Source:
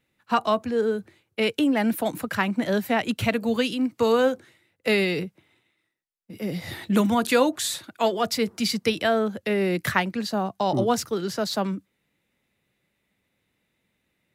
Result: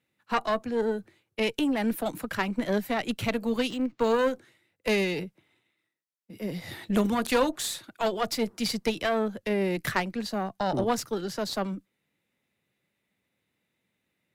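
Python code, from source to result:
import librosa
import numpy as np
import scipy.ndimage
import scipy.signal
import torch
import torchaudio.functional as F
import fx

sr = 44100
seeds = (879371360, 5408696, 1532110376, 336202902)

y = scipy.signal.sosfilt(scipy.signal.butter(2, 86.0, 'highpass', fs=sr, output='sos'), x)
y = fx.tube_stage(y, sr, drive_db=15.0, bias=0.75)
y = fx.resample_linear(y, sr, factor=4, at=(3.7, 4.19))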